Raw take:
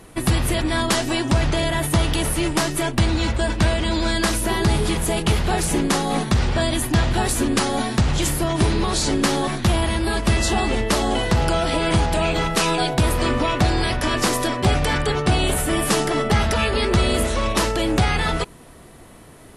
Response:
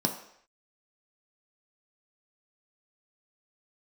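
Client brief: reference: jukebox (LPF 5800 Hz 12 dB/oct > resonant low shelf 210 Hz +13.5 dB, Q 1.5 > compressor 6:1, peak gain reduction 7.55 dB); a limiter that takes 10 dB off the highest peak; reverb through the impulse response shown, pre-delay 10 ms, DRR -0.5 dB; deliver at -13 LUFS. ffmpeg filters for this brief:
-filter_complex "[0:a]alimiter=limit=-18dB:level=0:latency=1,asplit=2[a][b];[1:a]atrim=start_sample=2205,adelay=10[c];[b][c]afir=irnorm=-1:irlink=0,volume=-7dB[d];[a][d]amix=inputs=2:normalize=0,lowpass=5.8k,lowshelf=f=210:t=q:w=1.5:g=13.5,acompressor=threshold=-8dB:ratio=6,volume=1dB"

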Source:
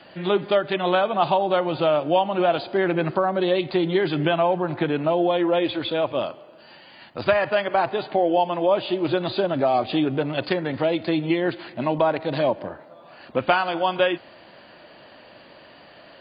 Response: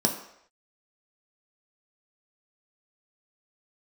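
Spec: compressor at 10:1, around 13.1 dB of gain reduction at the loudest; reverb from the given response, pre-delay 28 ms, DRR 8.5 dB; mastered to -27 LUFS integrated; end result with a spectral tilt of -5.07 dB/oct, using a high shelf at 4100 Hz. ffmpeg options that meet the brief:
-filter_complex "[0:a]highshelf=f=4.1k:g=-6,acompressor=threshold=-28dB:ratio=10,asplit=2[a][b];[1:a]atrim=start_sample=2205,adelay=28[c];[b][c]afir=irnorm=-1:irlink=0,volume=-19dB[d];[a][d]amix=inputs=2:normalize=0,volume=4.5dB"

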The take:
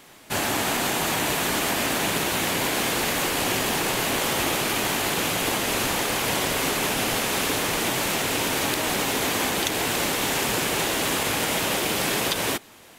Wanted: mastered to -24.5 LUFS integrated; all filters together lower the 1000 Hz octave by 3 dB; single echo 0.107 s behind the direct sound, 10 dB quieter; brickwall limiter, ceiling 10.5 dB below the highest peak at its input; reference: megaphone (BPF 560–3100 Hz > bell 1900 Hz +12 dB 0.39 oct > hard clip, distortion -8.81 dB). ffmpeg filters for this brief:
-af "equalizer=f=1k:t=o:g=-4,alimiter=limit=-18dB:level=0:latency=1,highpass=560,lowpass=3.1k,equalizer=f=1.9k:t=o:w=0.39:g=12,aecho=1:1:107:0.316,asoftclip=type=hard:threshold=-28.5dB,volume=4.5dB"

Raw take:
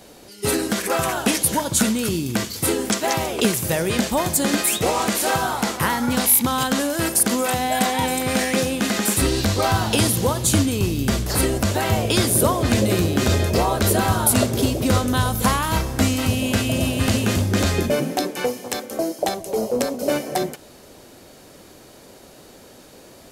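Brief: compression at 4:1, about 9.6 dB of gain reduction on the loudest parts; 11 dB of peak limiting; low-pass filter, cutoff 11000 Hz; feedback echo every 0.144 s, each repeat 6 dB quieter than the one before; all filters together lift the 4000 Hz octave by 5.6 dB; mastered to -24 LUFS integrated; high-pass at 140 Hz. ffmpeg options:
-af "highpass=140,lowpass=11k,equalizer=f=4k:t=o:g=7,acompressor=threshold=-26dB:ratio=4,alimiter=limit=-20dB:level=0:latency=1,aecho=1:1:144|288|432|576|720|864:0.501|0.251|0.125|0.0626|0.0313|0.0157,volume=4.5dB"

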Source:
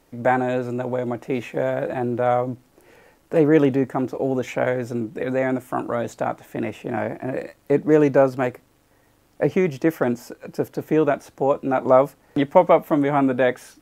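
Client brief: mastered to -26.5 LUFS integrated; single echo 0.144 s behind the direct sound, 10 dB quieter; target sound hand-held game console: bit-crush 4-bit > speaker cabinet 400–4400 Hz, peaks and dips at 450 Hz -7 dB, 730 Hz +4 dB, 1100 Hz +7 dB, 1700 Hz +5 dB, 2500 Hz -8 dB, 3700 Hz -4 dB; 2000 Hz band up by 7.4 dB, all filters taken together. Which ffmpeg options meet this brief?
-af "equalizer=f=2k:t=o:g=6,aecho=1:1:144:0.316,acrusher=bits=3:mix=0:aa=0.000001,highpass=400,equalizer=f=450:t=q:w=4:g=-7,equalizer=f=730:t=q:w=4:g=4,equalizer=f=1.1k:t=q:w=4:g=7,equalizer=f=1.7k:t=q:w=4:g=5,equalizer=f=2.5k:t=q:w=4:g=-8,equalizer=f=3.7k:t=q:w=4:g=-4,lowpass=f=4.4k:w=0.5412,lowpass=f=4.4k:w=1.3066,volume=-5.5dB"

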